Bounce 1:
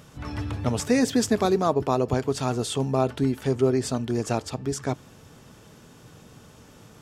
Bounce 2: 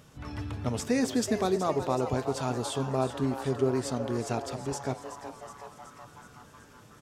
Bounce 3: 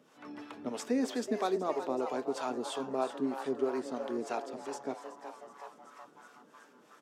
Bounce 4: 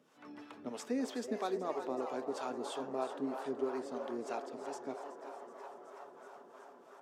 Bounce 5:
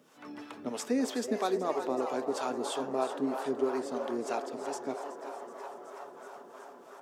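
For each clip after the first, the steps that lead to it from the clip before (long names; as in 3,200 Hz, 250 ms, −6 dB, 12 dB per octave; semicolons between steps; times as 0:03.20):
hum removal 171.1 Hz, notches 40; on a send: echo with shifted repeats 373 ms, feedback 65%, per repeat +150 Hz, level −11.5 dB; on the sum: level −5.5 dB
high-pass filter 240 Hz 24 dB per octave; high-shelf EQ 4,200 Hz −8 dB; two-band tremolo in antiphase 3.1 Hz, depth 70%, crossover 500 Hz
delay with a band-pass on its return 330 ms, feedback 80%, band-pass 840 Hz, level −9 dB; level −5 dB
high-shelf EQ 6,700 Hz +6 dB; level +6 dB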